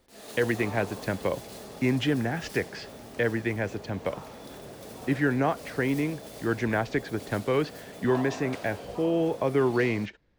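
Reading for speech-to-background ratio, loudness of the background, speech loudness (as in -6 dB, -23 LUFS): 14.0 dB, -42.5 LUFS, -28.5 LUFS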